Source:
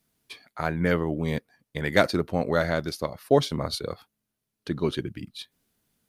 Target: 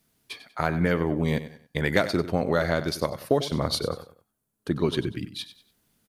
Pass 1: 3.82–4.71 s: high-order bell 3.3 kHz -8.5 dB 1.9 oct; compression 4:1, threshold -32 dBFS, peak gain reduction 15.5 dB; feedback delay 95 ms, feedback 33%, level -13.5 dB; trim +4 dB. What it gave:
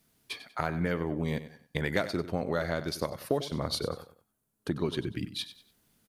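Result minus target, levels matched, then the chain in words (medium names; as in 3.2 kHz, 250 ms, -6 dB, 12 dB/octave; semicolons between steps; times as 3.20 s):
compression: peak gain reduction +7 dB
3.82–4.71 s: high-order bell 3.3 kHz -8.5 dB 1.9 oct; compression 4:1, threshold -23 dBFS, peak gain reduction 9 dB; feedback delay 95 ms, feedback 33%, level -13.5 dB; trim +4 dB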